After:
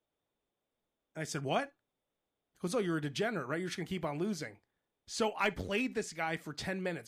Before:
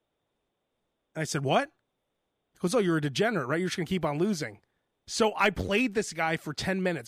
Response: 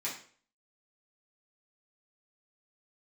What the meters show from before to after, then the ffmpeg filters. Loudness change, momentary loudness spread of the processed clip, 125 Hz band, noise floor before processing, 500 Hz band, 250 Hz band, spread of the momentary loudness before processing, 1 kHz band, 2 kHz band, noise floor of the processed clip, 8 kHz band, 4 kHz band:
-7.5 dB, 10 LU, -8.5 dB, -81 dBFS, -7.5 dB, -7.5 dB, 9 LU, -7.5 dB, -7.0 dB, under -85 dBFS, -7.0 dB, -7.5 dB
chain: -filter_complex "[0:a]asplit=2[s0][s1];[1:a]atrim=start_sample=2205,atrim=end_sample=3528[s2];[s1][s2]afir=irnorm=-1:irlink=0,volume=0.141[s3];[s0][s3]amix=inputs=2:normalize=0,volume=0.398"

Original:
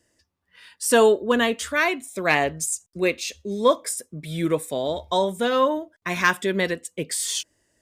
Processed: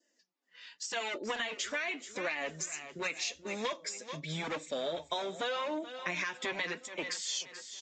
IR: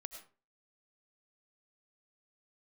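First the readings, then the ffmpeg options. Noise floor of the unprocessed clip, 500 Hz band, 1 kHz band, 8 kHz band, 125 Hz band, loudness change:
-75 dBFS, -16.5 dB, -14.5 dB, -11.5 dB, -14.0 dB, -13.0 dB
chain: -filter_complex "[0:a]acrossover=split=610[s0][s1];[s0]aeval=exprs='0.0501*(abs(mod(val(0)/0.0501+3,4)-2)-1)':c=same[s2];[s2][s1]amix=inputs=2:normalize=0,adynamicequalizer=threshold=0.0141:dfrequency=2300:dqfactor=3.1:tfrequency=2300:tqfactor=3.1:attack=5:release=100:ratio=0.375:range=2.5:mode=boostabove:tftype=bell,highpass=f=370:p=1,aecho=1:1:430|860|1290|1720:0.168|0.0672|0.0269|0.0107,flanger=delay=3.3:depth=4.7:regen=31:speed=0.86:shape=sinusoidal,equalizer=f=1100:t=o:w=1:g=-5,dynaudnorm=f=320:g=3:m=1.58,alimiter=limit=0.178:level=0:latency=1:release=159,acompressor=threshold=0.0355:ratio=8,volume=0.75" -ar 16000 -c:a libvorbis -b:a 48k

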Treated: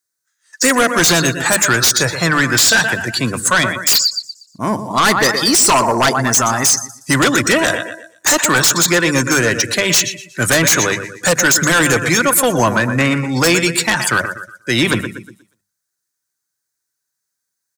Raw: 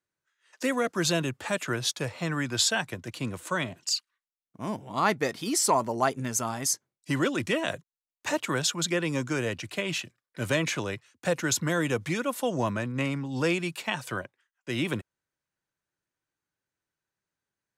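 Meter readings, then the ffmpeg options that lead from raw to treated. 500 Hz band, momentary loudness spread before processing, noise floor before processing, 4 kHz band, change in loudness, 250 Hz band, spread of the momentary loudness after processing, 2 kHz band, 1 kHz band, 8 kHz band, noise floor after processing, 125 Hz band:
+12.0 dB, 10 LU, under -85 dBFS, +16.0 dB, +15.5 dB, +12.5 dB, 8 LU, +18.0 dB, +14.5 dB, +18.0 dB, -77 dBFS, +12.0 dB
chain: -filter_complex "[0:a]deesser=0.6,equalizer=f=1600:t=o:w=1.2:g=8.5,bandreject=f=50:t=h:w=6,bandreject=f=100:t=h:w=6,bandreject=f=150:t=h:w=6,bandreject=f=200:t=h:w=6,asplit=2[s0][s1];[s1]aecho=0:1:120|240|360|480|600:0.282|0.144|0.0733|0.0374|0.0191[s2];[s0][s2]amix=inputs=2:normalize=0,afftdn=nr=18:nf=-41,highshelf=f=11000:g=-3.5,aexciter=amount=13.1:drive=1.3:freq=4200,asplit=2[s3][s4];[s4]aeval=exprs='0.708*sin(PI/2*6.31*val(0)/0.708)':c=same,volume=0.473[s5];[s3][s5]amix=inputs=2:normalize=0,volume=0.891"

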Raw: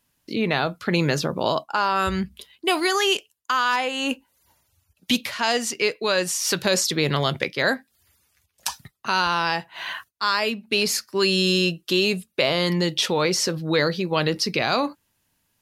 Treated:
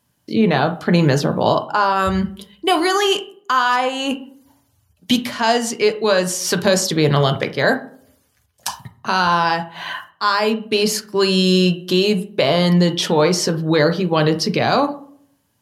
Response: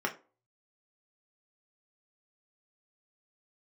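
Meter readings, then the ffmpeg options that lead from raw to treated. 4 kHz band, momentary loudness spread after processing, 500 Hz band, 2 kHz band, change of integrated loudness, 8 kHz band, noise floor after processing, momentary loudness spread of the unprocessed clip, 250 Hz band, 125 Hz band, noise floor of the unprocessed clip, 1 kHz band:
+2.0 dB, 8 LU, +6.5 dB, +2.5 dB, +5.0 dB, +2.0 dB, -64 dBFS, 9 LU, +7.5 dB, +8.5 dB, -72 dBFS, +6.5 dB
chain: -filter_complex "[0:a]asplit=2[s0][s1];[1:a]atrim=start_sample=2205,asetrate=23814,aresample=44100,lowshelf=f=91:g=10.5[s2];[s1][s2]afir=irnorm=-1:irlink=0,volume=0.316[s3];[s0][s3]amix=inputs=2:normalize=0"

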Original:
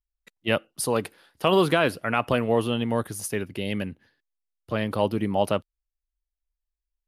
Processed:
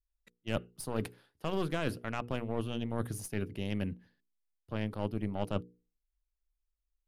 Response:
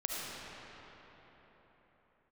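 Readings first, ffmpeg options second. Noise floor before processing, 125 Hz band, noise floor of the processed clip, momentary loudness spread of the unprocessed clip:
under -85 dBFS, -6.0 dB, under -85 dBFS, 9 LU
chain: -af "aeval=exprs='0.447*(cos(1*acos(clip(val(0)/0.447,-1,1)))-cos(1*PI/2))+0.0398*(cos(4*acos(clip(val(0)/0.447,-1,1)))-cos(4*PI/2))+0.0251*(cos(7*acos(clip(val(0)/0.447,-1,1)))-cos(7*PI/2))':c=same,lowshelf=f=290:g=10,areverse,acompressor=threshold=0.0562:ratio=6,areverse,bandreject=f=60:t=h:w=6,bandreject=f=120:t=h:w=6,bandreject=f=180:t=h:w=6,bandreject=f=240:t=h:w=6,bandreject=f=300:t=h:w=6,bandreject=f=360:t=h:w=6,bandreject=f=420:t=h:w=6,bandreject=f=480:t=h:w=6,volume=0.631"

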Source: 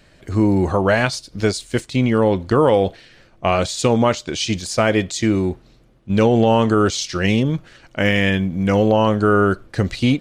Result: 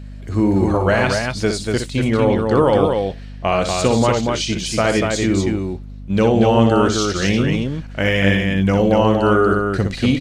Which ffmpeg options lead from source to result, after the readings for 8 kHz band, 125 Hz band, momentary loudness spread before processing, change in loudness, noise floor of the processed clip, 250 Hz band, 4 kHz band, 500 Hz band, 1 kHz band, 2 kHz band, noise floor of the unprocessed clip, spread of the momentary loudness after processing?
+1.0 dB, +1.0 dB, 8 LU, +1.0 dB, -33 dBFS, +1.0 dB, +1.0 dB, +1.0 dB, +1.0 dB, +1.0 dB, -52 dBFS, 7 LU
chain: -af "aecho=1:1:61.22|239.1:0.447|0.631,aeval=exprs='val(0)+0.0282*(sin(2*PI*50*n/s)+sin(2*PI*2*50*n/s)/2+sin(2*PI*3*50*n/s)/3+sin(2*PI*4*50*n/s)/4+sin(2*PI*5*50*n/s)/5)':c=same,volume=0.891"

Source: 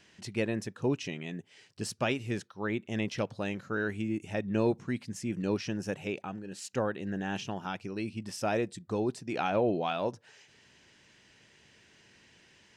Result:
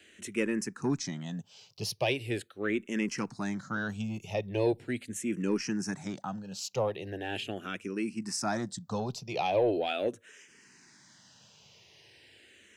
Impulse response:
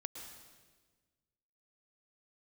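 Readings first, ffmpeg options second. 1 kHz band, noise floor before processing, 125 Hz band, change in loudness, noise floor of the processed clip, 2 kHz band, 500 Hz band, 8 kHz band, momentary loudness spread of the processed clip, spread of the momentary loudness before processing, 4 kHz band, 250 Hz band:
0.0 dB, -62 dBFS, -1.0 dB, +0.5 dB, -60 dBFS, +0.5 dB, +0.5 dB, +5.5 dB, 8 LU, 9 LU, +3.5 dB, 0.0 dB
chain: -filter_complex "[0:a]highpass=88,acrossover=split=150|4100[s0][s1][s2];[s2]acontrast=36[s3];[s0][s1][s3]amix=inputs=3:normalize=0,asoftclip=type=tanh:threshold=0.106,asplit=2[s4][s5];[s5]afreqshift=-0.4[s6];[s4][s6]amix=inputs=2:normalize=1,volume=1.58"

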